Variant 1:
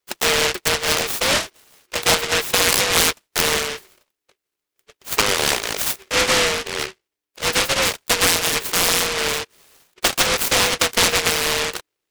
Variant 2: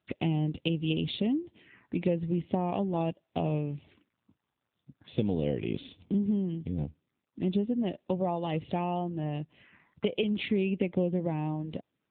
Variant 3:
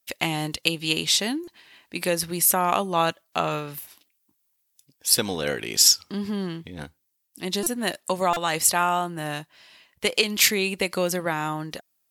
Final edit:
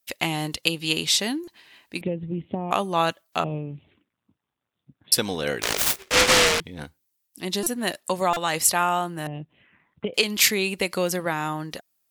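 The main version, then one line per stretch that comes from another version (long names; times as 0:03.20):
3
0:02.01–0:02.71: punch in from 2
0:03.44–0:05.12: punch in from 2
0:05.62–0:06.60: punch in from 1
0:09.27–0:10.14: punch in from 2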